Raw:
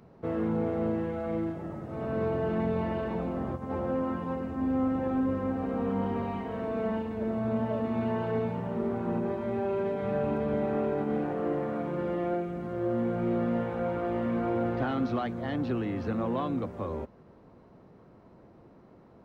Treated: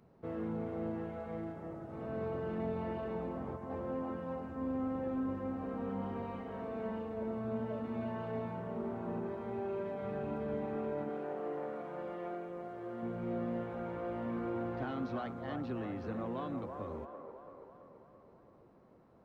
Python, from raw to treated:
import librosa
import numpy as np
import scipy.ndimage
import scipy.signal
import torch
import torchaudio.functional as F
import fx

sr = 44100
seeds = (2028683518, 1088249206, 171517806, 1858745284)

p1 = fx.low_shelf(x, sr, hz=270.0, db=-11.0, at=(11.09, 13.03))
p2 = p1 + fx.echo_wet_bandpass(p1, sr, ms=333, feedback_pct=59, hz=820.0, wet_db=-5, dry=0)
y = F.gain(torch.from_numpy(p2), -9.0).numpy()